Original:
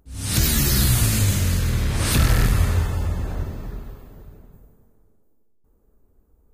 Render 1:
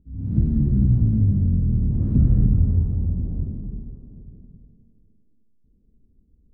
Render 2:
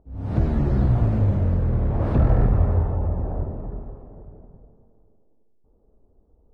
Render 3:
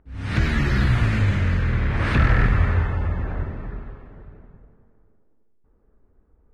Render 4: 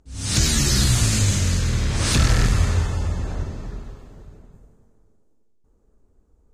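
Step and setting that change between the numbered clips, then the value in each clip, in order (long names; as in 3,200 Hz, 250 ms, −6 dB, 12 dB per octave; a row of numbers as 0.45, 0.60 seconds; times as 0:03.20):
low-pass with resonance, frequency: 220, 710, 1,900, 6,900 Hertz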